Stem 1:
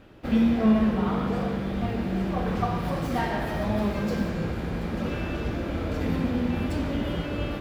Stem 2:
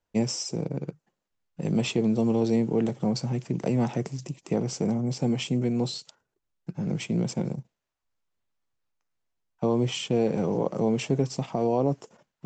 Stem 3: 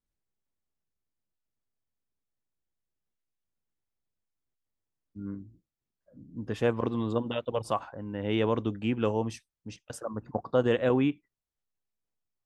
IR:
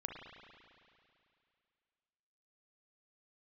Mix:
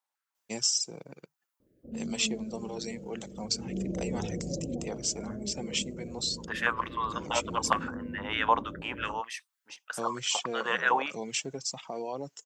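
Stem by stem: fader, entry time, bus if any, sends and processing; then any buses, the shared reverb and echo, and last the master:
3.48 s -14.5 dB -> 3.79 s -3.5 dB -> 4.71 s -3.5 dB -> 5.06 s -10.5 dB, 1.60 s, no send, steep low-pass 570 Hz 48 dB/oct; low shelf 99 Hz -10 dB
-5.0 dB, 0.35 s, no send, reverb removal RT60 1.7 s; tilt +4.5 dB/oct
+2.5 dB, 0.00 s, no send, stepped high-pass 6.6 Hz 860–1900 Hz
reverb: off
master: dry

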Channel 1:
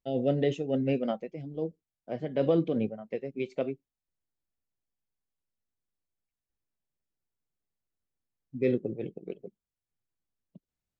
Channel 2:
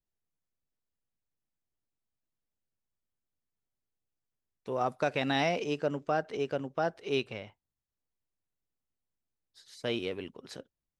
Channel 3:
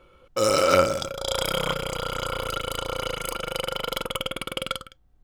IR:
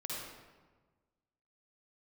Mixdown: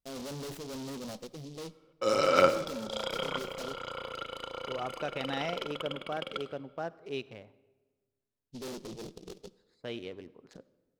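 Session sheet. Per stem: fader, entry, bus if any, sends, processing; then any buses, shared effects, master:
-1.0 dB, 0.00 s, send -19 dB, tube stage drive 38 dB, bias 0.45; noise-modulated delay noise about 4200 Hz, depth 0.11 ms
-7.0 dB, 0.00 s, send -19 dB, Wiener smoothing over 15 samples
-3.5 dB, 1.65 s, send -14 dB, three-band isolator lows -12 dB, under 160 Hz, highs -16 dB, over 5500 Hz; upward expander 1.5:1, over -35 dBFS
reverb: on, RT60 1.4 s, pre-delay 46 ms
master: dry

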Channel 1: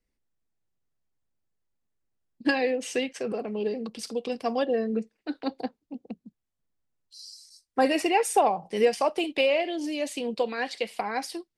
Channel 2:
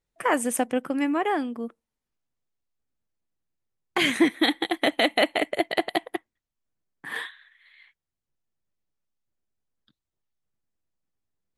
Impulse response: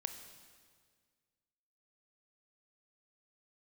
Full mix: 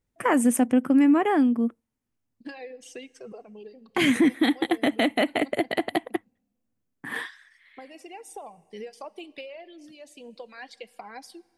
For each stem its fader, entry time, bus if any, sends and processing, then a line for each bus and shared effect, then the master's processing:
-11.0 dB, 0.00 s, send -10.5 dB, reverb removal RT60 1.9 s; compressor 10:1, threshold -26 dBFS, peak gain reduction 10.5 dB; auto duck -8 dB, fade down 0.60 s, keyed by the second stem
+0.5 dB, 0.00 s, no send, fifteen-band EQ 100 Hz +11 dB, 250 Hz +10 dB, 4000 Hz -5 dB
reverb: on, RT60 1.8 s, pre-delay 22 ms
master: limiter -12 dBFS, peak gain reduction 8 dB

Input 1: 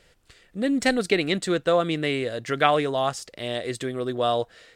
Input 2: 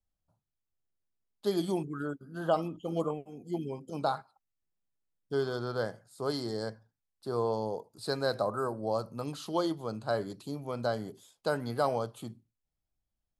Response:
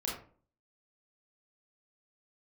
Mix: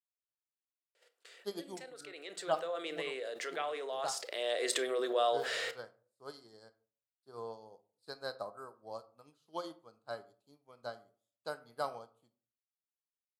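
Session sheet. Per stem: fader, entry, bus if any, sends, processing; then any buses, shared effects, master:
2.05 s -24 dB -> 2.62 s -12.5 dB -> 4.25 s -12.5 dB -> 4.64 s -4.5 dB, 0.95 s, send -12 dB, gate -55 dBFS, range -23 dB; ladder high-pass 380 Hz, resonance 45%; fast leveller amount 70%
-1.0 dB, 0.00 s, send -14.5 dB, upward expander 2.5:1, over -45 dBFS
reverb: on, RT60 0.45 s, pre-delay 26 ms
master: low shelf 470 Hz -10.5 dB

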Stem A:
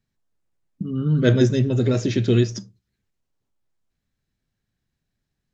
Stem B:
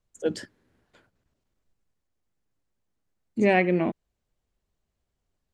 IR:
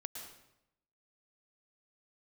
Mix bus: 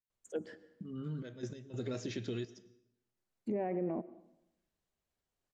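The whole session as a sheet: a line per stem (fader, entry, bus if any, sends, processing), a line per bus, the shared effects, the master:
-14.0 dB, 0.00 s, send -11 dB, compressor, threshold -17 dBFS, peak gain reduction 6.5 dB; step gate "..x..xxxxxxx" 147 bpm -12 dB
-5.5 dB, 0.10 s, send -13.5 dB, treble ducked by the level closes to 730 Hz, closed at -21 dBFS; auto duck -10 dB, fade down 0.80 s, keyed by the first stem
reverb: on, RT60 0.85 s, pre-delay 0.103 s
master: low shelf 200 Hz -10 dB; limiter -27.5 dBFS, peak gain reduction 9 dB

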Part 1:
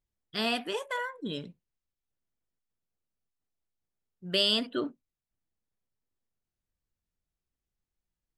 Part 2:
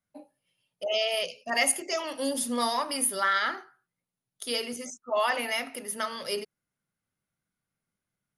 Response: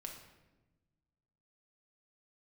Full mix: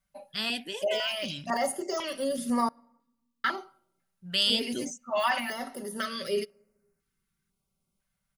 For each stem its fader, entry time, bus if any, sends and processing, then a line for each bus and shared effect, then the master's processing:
+2.5 dB, 0.00 s, no send, bell 600 Hz -9.5 dB 2.4 oct
+2.5 dB, 0.00 s, muted 2.69–3.44, send -20 dB, de-esser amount 100%; comb 5.2 ms, depth 61%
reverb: on, RT60 1.1 s, pre-delay 5 ms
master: stepped notch 2 Hz 320–3400 Hz

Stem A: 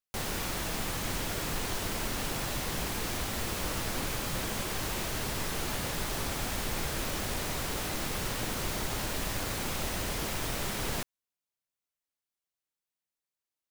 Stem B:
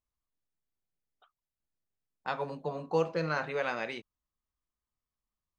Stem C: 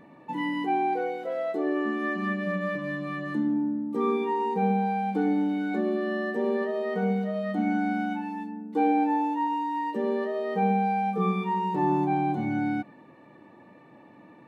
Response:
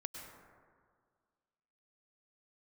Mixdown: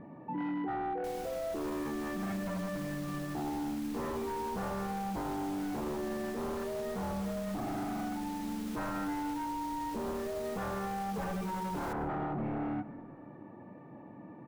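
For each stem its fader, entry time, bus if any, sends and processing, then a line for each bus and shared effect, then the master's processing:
-16.0 dB, 0.90 s, no bus, send -5.5 dB, dry
off
-3.0 dB, 0.00 s, bus A, send -14.5 dB, low shelf 230 Hz +11 dB; wavefolder -21 dBFS; LPF 1600 Hz 12 dB/oct
bus A: 0.0 dB, bell 720 Hz +3 dB; limiter -30 dBFS, peak gain reduction 8.5 dB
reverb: on, RT60 1.9 s, pre-delay 92 ms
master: limiter -29.5 dBFS, peak gain reduction 4.5 dB

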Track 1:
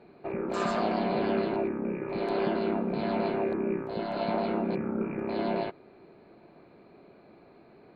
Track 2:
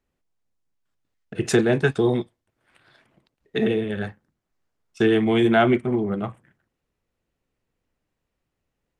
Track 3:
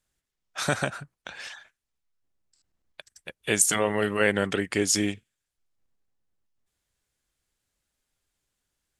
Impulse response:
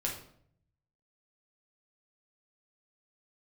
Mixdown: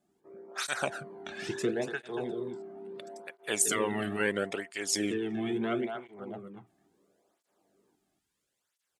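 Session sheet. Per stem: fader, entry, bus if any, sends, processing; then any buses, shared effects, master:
-8.5 dB, 0.00 s, no send, echo send -6.5 dB, polynomial smoothing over 41 samples; resonator 98 Hz, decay 0.91 s, harmonics all, mix 80%; compressor, threshold -35 dBFS, peak gain reduction 5.5 dB
-14.0 dB, 0.10 s, no send, echo send -7.5 dB, dry
-2.5 dB, 0.00 s, no send, no echo send, dry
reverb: off
echo: echo 0.235 s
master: vocal rider within 4 dB 2 s; tape flanging out of phase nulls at 0.74 Hz, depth 2.2 ms

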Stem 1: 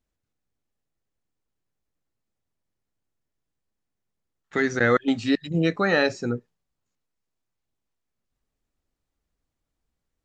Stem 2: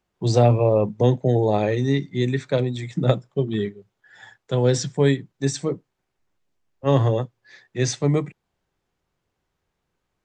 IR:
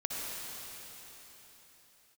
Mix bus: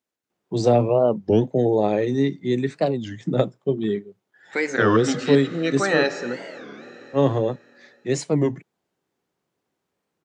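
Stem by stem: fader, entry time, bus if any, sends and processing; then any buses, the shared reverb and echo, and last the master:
-1.0 dB, 0.00 s, send -13 dB, dry
-3.5 dB, 0.30 s, no send, de-esser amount 45%; low shelf 430 Hz +11.5 dB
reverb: on, RT60 3.9 s, pre-delay 53 ms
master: HPF 260 Hz 12 dB/oct; record warp 33 1/3 rpm, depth 250 cents

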